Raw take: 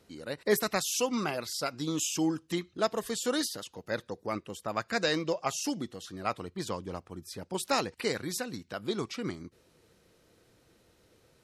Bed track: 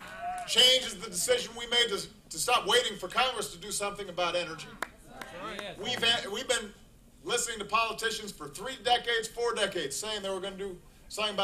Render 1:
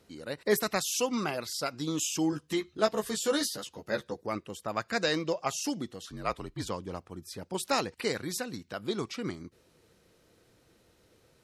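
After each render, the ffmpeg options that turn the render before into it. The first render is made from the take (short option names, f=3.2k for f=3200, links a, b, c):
-filter_complex "[0:a]asettb=1/sr,asplit=3[a][b][c];[a]atrim=end=2.314[d];[b]atrim=start=2.31:end=4.21,asetpts=PTS-STARTPTS,afade=t=in:d=0.004:c=qsin,afade=t=out:st=1.896:d=0.004:c=qsin,asplit=2[e][f];[f]adelay=14,volume=-4dB[g];[e][g]amix=inputs=2:normalize=0,atrim=end_sample=83790[h];[c]atrim=start=4.206[i];[d][h]acrossfade=d=0.004:c1=hsin:c2=qsin[j];[j][i]acrossfade=d=0.004:c1=qsin:c2=hsin,asettb=1/sr,asplit=3[k][l][m];[k]atrim=end=6.074[n];[l]atrim=start=6.07:end=6.69,asetpts=PTS-STARTPTS,afade=t=in:d=0.004:c=qsin,afade=t=out:st=0.616:d=0.004:c=qsin,afreqshift=-50[o];[m]atrim=start=6.686[p];[n][o]acrossfade=d=0.004:c1=hsin:c2=qsin[q];[q][p]acrossfade=d=0.004:c1=qsin:c2=hsin"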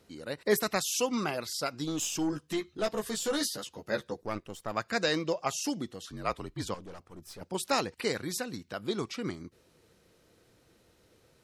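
-filter_complex "[0:a]asettb=1/sr,asplit=3[a][b][c];[a]atrim=end=1.844[d];[b]atrim=start=1.84:end=3.4,asetpts=PTS-STARTPTS,afade=t=in:d=0.004:c=qsin,afade=t=out:st=1.556:d=0.004:c=qsin,aeval=exprs='(tanh(14.1*val(0)+0.25)-tanh(0.25))/14.1':c=same[e];[c]atrim=start=3.396[f];[d][e]acrossfade=d=0.004:c1=hsin:c2=qsin[g];[g][f]acrossfade=d=0.004:c1=qsin:c2=hsin,asettb=1/sr,asplit=3[h][i][j];[h]atrim=end=4.224[k];[i]atrim=start=4.22:end=4.72,asetpts=PTS-STARTPTS,afade=t=in:d=0.004:c=qsin,afade=t=out:st=0.496:d=0.004:c=qsin,aeval=exprs='if(lt(val(0),0),0.447*val(0),val(0))':c=same[l];[j]atrim=start=4.716[m];[k][l]acrossfade=d=0.004:c1=hsin:c2=qsin[n];[n][m]acrossfade=d=0.004:c1=qsin:c2=hsin,asettb=1/sr,asplit=3[o][p][q];[o]atrim=end=6.744[r];[p]atrim=start=6.74:end=7.41,asetpts=PTS-STARTPTS,afade=t=in:d=0.004:c=qsin,afade=t=out:st=0.666:d=0.004:c=qsin,aeval=exprs='(tanh(112*val(0)+0.55)-tanh(0.55))/112':c=same[s];[q]atrim=start=7.406[t];[r][s]acrossfade=d=0.004:c1=hsin:c2=qsin[u];[u][t]acrossfade=d=0.004:c1=qsin:c2=hsin"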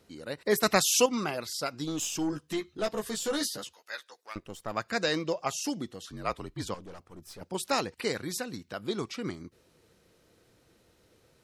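-filter_complex "[0:a]asettb=1/sr,asplit=3[a][b][c];[a]atrim=end=0.634[d];[b]atrim=start=0.63:end=1.06,asetpts=PTS-STARTPTS,afade=t=in:d=0.004:c=qsin,afade=t=out:st=0.426:d=0.004:c=qsin,acontrast=65[e];[c]atrim=start=1.056[f];[d][e]acrossfade=d=0.004:c1=hsin:c2=qsin[g];[g][f]acrossfade=d=0.004:c1=qsin:c2=hsin,asettb=1/sr,asplit=3[h][i][j];[h]atrim=end=3.734[k];[i]atrim=start=3.73:end=4.36,asetpts=PTS-STARTPTS,afade=t=in:d=0.004:c=qsin,afade=t=out:st=0.626:d=0.004:c=qsin,highpass=1.4k[l];[j]atrim=start=4.356[m];[k][l]acrossfade=d=0.004:c1=hsin:c2=qsin[n];[n][m]acrossfade=d=0.004:c1=qsin:c2=hsin"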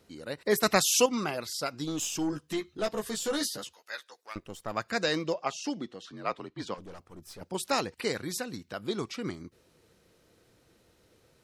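-filter_complex "[0:a]asettb=1/sr,asplit=3[a][b][c];[a]atrim=end=5.344[d];[b]atrim=start=5.34:end=6.78,asetpts=PTS-STARTPTS,afade=t=in:d=0.004:c=qsin,afade=t=out:st=1.436:d=0.004:c=qsin,highpass=180,lowpass=4.8k[e];[c]atrim=start=6.776[f];[d][e]acrossfade=d=0.004:c1=hsin:c2=qsin[g];[g][f]acrossfade=d=0.004:c1=qsin:c2=hsin"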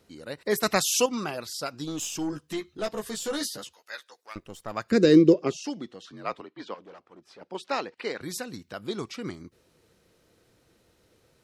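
-filter_complex "[0:a]asettb=1/sr,asplit=3[a][b][c];[a]atrim=end=0.884[d];[b]atrim=start=0.88:end=1.9,asetpts=PTS-STARTPTS,afade=t=in:d=0.004:c=qsin,afade=t=out:st=1.016:d=0.004:c=qsin,bandreject=f=2.1k:w=12[e];[c]atrim=start=1.896[f];[d][e]acrossfade=d=0.004:c1=hsin:c2=qsin[g];[g][f]acrossfade=d=0.004:c1=qsin:c2=hsin,asettb=1/sr,asplit=3[h][i][j];[h]atrim=end=4.914[k];[i]atrim=start=4.91:end=5.62,asetpts=PTS-STARTPTS,afade=t=in:d=0.004:c=qsin,afade=t=out:st=0.706:d=0.004:c=qsin,lowshelf=f=540:t=q:w=3:g=12[l];[j]atrim=start=5.616[m];[k][l]acrossfade=d=0.004:c1=hsin:c2=qsin[n];[n][m]acrossfade=d=0.004:c1=qsin:c2=hsin,asettb=1/sr,asplit=3[o][p][q];[o]atrim=end=6.414[r];[p]atrim=start=6.41:end=8.21,asetpts=PTS-STARTPTS,afade=t=in:d=0.004:c=qsin,afade=t=out:st=1.796:d=0.004:c=qsin,highpass=280,lowpass=3.8k[s];[q]atrim=start=8.206[t];[r][s]acrossfade=d=0.004:c1=hsin:c2=qsin[u];[u][t]acrossfade=d=0.004:c1=qsin:c2=hsin"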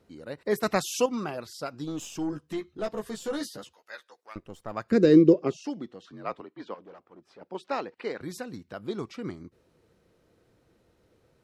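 -af "highshelf=f=2.2k:g=-10"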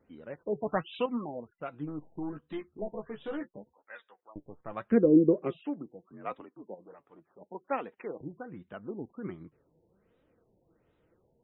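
-af "flanger=delay=3.4:depth=3.8:regen=55:speed=0.78:shape=triangular,afftfilt=real='re*lt(b*sr/1024,920*pow(4000/920,0.5+0.5*sin(2*PI*1.3*pts/sr)))':imag='im*lt(b*sr/1024,920*pow(4000/920,0.5+0.5*sin(2*PI*1.3*pts/sr)))':win_size=1024:overlap=0.75"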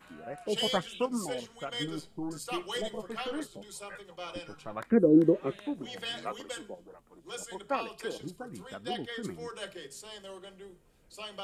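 -filter_complex "[1:a]volume=-11.5dB[a];[0:a][a]amix=inputs=2:normalize=0"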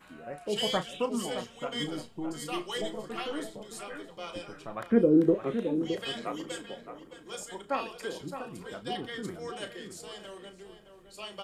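-filter_complex "[0:a]asplit=2[a][b];[b]adelay=34,volume=-11dB[c];[a][c]amix=inputs=2:normalize=0,asplit=2[d][e];[e]adelay=616,lowpass=f=2.3k:p=1,volume=-9dB,asplit=2[f][g];[g]adelay=616,lowpass=f=2.3k:p=1,volume=0.25,asplit=2[h][i];[i]adelay=616,lowpass=f=2.3k:p=1,volume=0.25[j];[d][f][h][j]amix=inputs=4:normalize=0"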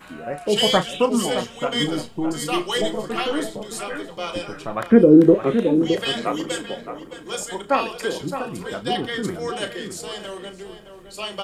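-af "volume=11.5dB,alimiter=limit=-2dB:level=0:latency=1"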